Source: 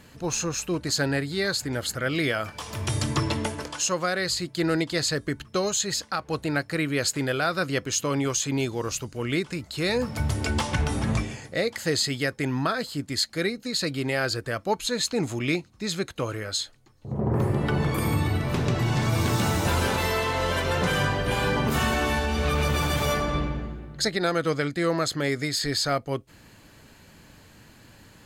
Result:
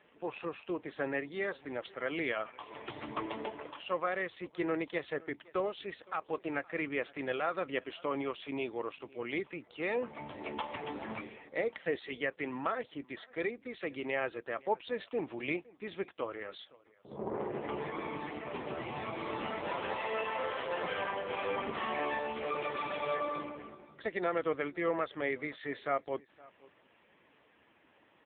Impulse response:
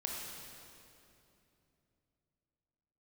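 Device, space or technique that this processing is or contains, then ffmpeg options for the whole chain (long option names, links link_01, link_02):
satellite phone: -af "highpass=370,lowpass=3200,bandreject=frequency=1500:width=7.1,aecho=1:1:515:0.0708,volume=-4.5dB" -ar 8000 -c:a libopencore_amrnb -b:a 5900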